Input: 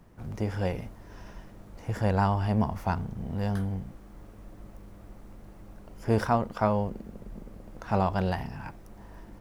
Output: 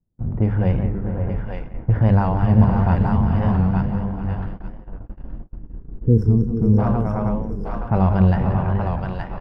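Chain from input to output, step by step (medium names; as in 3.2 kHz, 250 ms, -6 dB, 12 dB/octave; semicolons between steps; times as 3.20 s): median filter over 5 samples; hum notches 50/100/150/200 Hz; multi-tap echo 180/432/516/540/641 ms -10/-11.5/-16.5/-9/-11 dB; level-controlled noise filter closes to 630 Hz, open at -21 dBFS; time-frequency box 5.55–6.79 s, 510–5200 Hz -27 dB; thinning echo 872 ms, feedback 21%, high-pass 970 Hz, level -3 dB; in parallel at -0.5 dB: peak limiter -21.5 dBFS, peak gain reduction 9.5 dB; on the sum: tone controls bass +12 dB, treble -15 dB; gate -28 dBFS, range -33 dB; warped record 45 rpm, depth 100 cents; trim -1 dB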